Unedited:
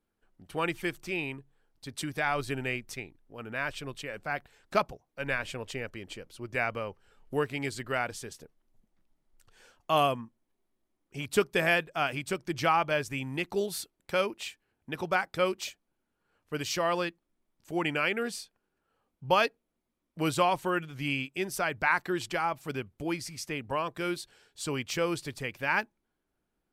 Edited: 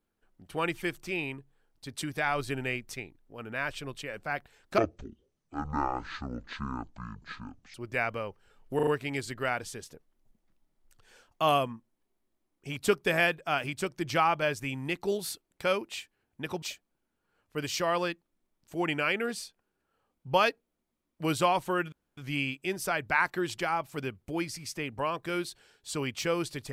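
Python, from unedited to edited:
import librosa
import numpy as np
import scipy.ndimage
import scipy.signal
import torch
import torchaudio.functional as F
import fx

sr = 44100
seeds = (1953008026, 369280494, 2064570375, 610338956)

y = fx.edit(x, sr, fx.speed_span(start_s=4.78, length_s=1.57, speed=0.53),
    fx.stutter(start_s=7.36, slice_s=0.04, count=4),
    fx.cut(start_s=15.11, length_s=0.48),
    fx.insert_room_tone(at_s=20.89, length_s=0.25), tone=tone)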